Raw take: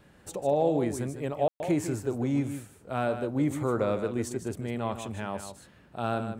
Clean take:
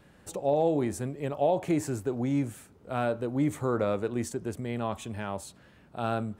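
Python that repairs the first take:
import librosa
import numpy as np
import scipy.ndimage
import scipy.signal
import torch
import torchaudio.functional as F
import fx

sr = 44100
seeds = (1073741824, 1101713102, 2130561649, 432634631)

y = fx.fix_ambience(x, sr, seeds[0], print_start_s=5.47, print_end_s=5.97, start_s=1.48, end_s=1.6)
y = fx.fix_echo_inverse(y, sr, delay_ms=153, level_db=-9.5)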